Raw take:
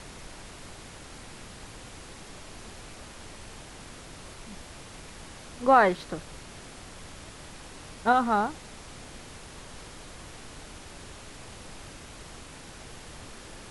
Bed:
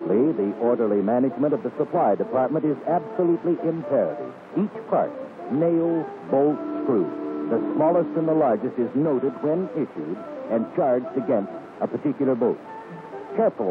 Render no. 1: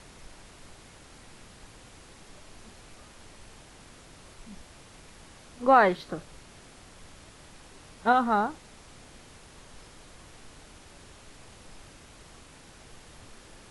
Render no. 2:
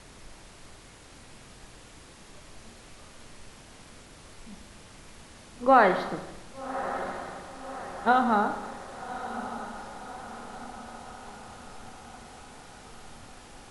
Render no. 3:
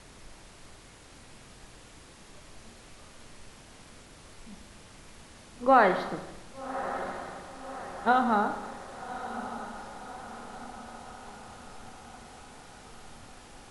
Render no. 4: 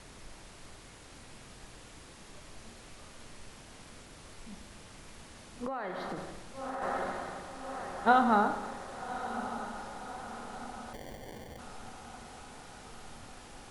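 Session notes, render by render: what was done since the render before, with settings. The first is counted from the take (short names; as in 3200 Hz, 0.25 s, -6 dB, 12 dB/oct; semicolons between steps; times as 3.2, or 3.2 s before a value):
noise print and reduce 6 dB
diffused feedback echo 1.165 s, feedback 56%, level -11.5 dB; Schroeder reverb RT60 1.1 s, combs from 27 ms, DRR 7.5 dB
gain -1.5 dB
5.66–6.82 compressor 16:1, threshold -33 dBFS; 10.93–11.59 sample-rate reducer 1300 Hz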